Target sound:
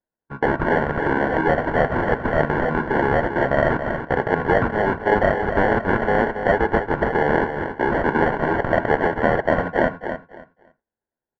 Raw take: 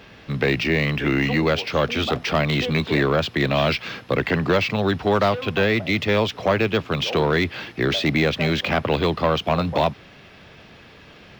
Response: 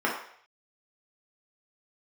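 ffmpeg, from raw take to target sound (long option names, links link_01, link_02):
-filter_complex "[0:a]asplit=2[link_01][link_02];[link_02]acompressor=threshold=-31dB:ratio=10,volume=1dB[link_03];[link_01][link_03]amix=inputs=2:normalize=0,highpass=frequency=460:poles=1,agate=range=-52dB:threshold=-29dB:ratio=16:detection=peak,acrusher=samples=35:mix=1:aa=0.000001,lowpass=frequency=1400:width_type=q:width=3.8,aecho=1:1:278|556|834:0.376|0.0789|0.0166,asplit=2[link_04][link_05];[1:a]atrim=start_sample=2205,atrim=end_sample=3087[link_06];[link_05][link_06]afir=irnorm=-1:irlink=0,volume=-24.5dB[link_07];[link_04][link_07]amix=inputs=2:normalize=0"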